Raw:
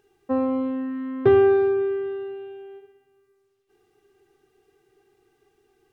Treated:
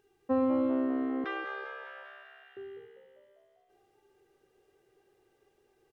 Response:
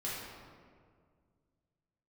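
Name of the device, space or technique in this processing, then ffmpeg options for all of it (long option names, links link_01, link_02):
keyed gated reverb: -filter_complex "[0:a]asplit=3[link_01][link_02][link_03];[1:a]atrim=start_sample=2205[link_04];[link_02][link_04]afir=irnorm=-1:irlink=0[link_05];[link_03]apad=whole_len=261242[link_06];[link_05][link_06]sidechaingate=range=-33dB:threshold=-48dB:ratio=16:detection=peak,volume=-10.5dB[link_07];[link_01][link_07]amix=inputs=2:normalize=0,asettb=1/sr,asplit=3[link_08][link_09][link_10];[link_08]atrim=end=1.244[link_11];[link_09]atrim=start=1.24:end=2.57,asetpts=PTS-STARTPTS,afade=type=in:duration=0.004:curve=qsin,afade=type=out:start_time=1.326:duration=0.004:curve=qsin,highpass=frequency=1100:width=0.5412,highpass=frequency=1100:width=1.3066[link_12];[link_10]atrim=start=2.566[link_13];[link_11][link_12]acrossfade=duration=0.004:curve1=hsin:curve2=qsin[link_14];[link_14][link_13]acrossfade=duration=0.004:curve1=qsin:curve2=hsin,asplit=8[link_15][link_16][link_17][link_18][link_19][link_20][link_21][link_22];[link_16]adelay=198,afreqshift=67,volume=-11.5dB[link_23];[link_17]adelay=396,afreqshift=134,volume=-15.7dB[link_24];[link_18]adelay=594,afreqshift=201,volume=-19.8dB[link_25];[link_19]adelay=792,afreqshift=268,volume=-24dB[link_26];[link_20]adelay=990,afreqshift=335,volume=-28.1dB[link_27];[link_21]adelay=1188,afreqshift=402,volume=-32.3dB[link_28];[link_22]adelay=1386,afreqshift=469,volume=-36.4dB[link_29];[link_15][link_23][link_24][link_25][link_26][link_27][link_28][link_29]amix=inputs=8:normalize=0,volume=-5.5dB"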